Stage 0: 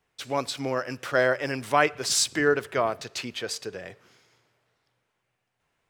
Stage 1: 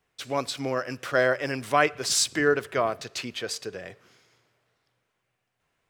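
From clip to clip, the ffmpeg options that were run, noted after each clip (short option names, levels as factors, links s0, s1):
-af "bandreject=f=880:w=16"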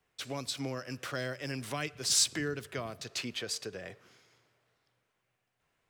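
-filter_complex "[0:a]acrossover=split=240|3000[s0][s1][s2];[s1]acompressor=threshold=0.0158:ratio=6[s3];[s0][s3][s2]amix=inputs=3:normalize=0,volume=0.75"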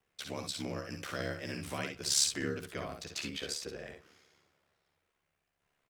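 -af "aeval=exprs='val(0)*sin(2*PI*35*n/s)':c=same,aecho=1:1:55|66:0.422|0.398"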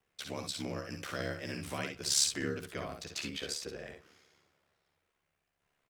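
-af anull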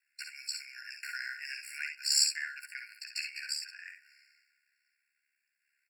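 -af "afftfilt=real='re*eq(mod(floor(b*sr/1024/1400),2),1)':imag='im*eq(mod(floor(b*sr/1024/1400),2),1)':win_size=1024:overlap=0.75,volume=1.68"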